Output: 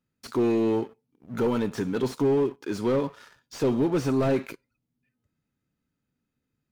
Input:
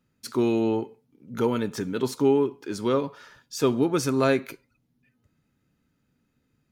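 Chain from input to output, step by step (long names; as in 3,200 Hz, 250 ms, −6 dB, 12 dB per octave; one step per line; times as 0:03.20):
leveller curve on the samples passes 2
slew-rate limiting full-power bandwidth 100 Hz
level −5.5 dB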